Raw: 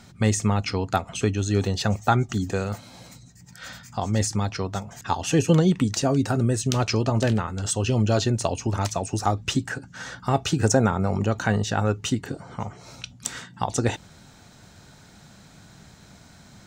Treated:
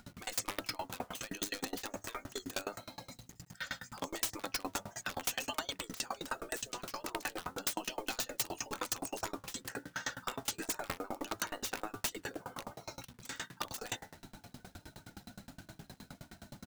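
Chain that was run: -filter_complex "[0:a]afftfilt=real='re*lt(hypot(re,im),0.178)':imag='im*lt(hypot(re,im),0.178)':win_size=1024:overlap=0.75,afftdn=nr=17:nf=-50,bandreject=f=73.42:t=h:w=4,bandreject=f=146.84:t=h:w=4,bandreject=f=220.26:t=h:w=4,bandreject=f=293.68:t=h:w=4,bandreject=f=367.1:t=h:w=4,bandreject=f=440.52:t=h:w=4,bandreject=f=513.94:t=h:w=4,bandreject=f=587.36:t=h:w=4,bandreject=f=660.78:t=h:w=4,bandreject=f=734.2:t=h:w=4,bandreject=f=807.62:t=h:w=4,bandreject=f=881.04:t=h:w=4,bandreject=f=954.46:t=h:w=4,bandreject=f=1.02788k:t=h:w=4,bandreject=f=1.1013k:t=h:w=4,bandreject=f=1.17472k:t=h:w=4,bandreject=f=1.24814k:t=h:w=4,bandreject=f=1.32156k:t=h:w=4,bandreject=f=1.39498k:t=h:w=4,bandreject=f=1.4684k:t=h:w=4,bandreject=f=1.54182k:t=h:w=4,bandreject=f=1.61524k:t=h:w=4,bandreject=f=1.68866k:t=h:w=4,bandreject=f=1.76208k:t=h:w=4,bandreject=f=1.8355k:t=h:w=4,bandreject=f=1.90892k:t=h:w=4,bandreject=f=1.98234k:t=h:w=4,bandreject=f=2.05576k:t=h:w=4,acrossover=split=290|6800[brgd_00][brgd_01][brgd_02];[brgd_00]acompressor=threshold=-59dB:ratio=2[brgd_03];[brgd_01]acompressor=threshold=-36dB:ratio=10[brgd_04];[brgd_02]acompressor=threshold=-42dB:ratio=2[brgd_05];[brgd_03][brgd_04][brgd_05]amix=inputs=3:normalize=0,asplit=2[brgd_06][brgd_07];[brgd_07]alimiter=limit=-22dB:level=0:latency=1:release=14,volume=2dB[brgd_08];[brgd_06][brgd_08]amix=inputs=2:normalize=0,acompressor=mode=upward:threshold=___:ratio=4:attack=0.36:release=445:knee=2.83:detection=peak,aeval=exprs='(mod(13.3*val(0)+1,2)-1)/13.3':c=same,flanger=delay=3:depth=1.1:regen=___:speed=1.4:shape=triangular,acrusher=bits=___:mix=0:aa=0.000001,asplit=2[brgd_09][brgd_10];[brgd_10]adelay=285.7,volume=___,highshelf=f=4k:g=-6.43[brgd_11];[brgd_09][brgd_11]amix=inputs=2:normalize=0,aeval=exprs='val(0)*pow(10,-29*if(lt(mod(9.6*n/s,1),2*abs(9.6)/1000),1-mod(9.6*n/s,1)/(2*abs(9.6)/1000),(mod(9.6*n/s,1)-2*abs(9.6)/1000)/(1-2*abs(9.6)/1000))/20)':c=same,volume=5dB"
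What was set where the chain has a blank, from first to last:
-36dB, 61, 8, -30dB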